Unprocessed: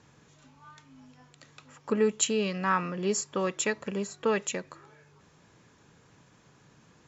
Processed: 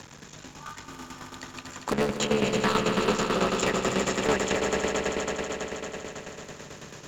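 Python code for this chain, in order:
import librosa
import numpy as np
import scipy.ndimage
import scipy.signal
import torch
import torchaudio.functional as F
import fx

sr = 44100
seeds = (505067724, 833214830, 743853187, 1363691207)

y = fx.cycle_switch(x, sr, every=3, mode='muted')
y = fx.env_lowpass_down(y, sr, base_hz=2600.0, full_db=-25.5)
y = fx.high_shelf(y, sr, hz=2700.0, db=9.5)
y = 10.0 ** (-19.0 / 20.0) * (np.abs((y / 10.0 ** (-19.0 / 20.0) + 3.0) % 4.0 - 2.0) - 1.0)
y = fx.echo_swell(y, sr, ms=80, loudest=5, wet_db=-8.0)
y = fx.tremolo_shape(y, sr, shape='saw_down', hz=9.1, depth_pct=70)
y = fx.band_squash(y, sr, depth_pct=40)
y = y * librosa.db_to_amplitude(5.5)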